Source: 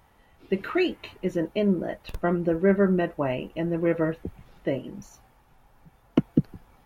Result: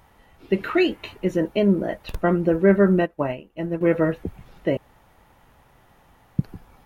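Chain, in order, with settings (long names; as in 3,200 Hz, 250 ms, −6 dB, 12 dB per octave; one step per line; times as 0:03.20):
0:03.03–0:03.81: expander for the loud parts 2.5 to 1, over −35 dBFS
0:04.77–0:06.39: fill with room tone
level +4.5 dB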